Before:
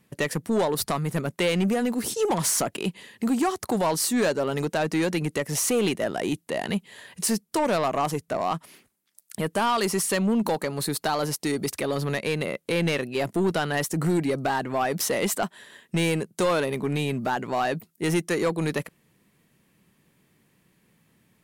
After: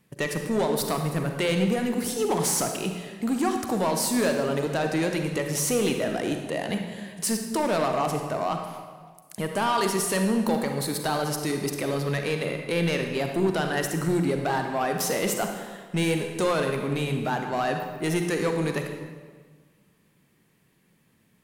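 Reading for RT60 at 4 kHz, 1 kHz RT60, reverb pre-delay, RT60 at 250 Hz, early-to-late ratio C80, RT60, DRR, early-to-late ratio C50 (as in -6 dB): 1.2 s, 1.5 s, 36 ms, 1.6 s, 6.5 dB, 1.5 s, 4.0 dB, 5.0 dB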